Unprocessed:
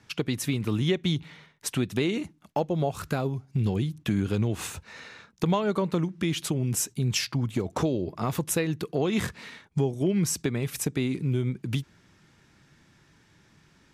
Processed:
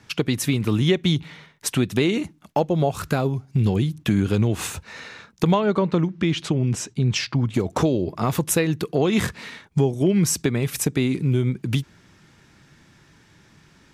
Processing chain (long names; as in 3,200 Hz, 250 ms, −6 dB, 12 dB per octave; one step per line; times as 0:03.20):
0:05.54–0:07.54: high-frequency loss of the air 100 metres
level +6 dB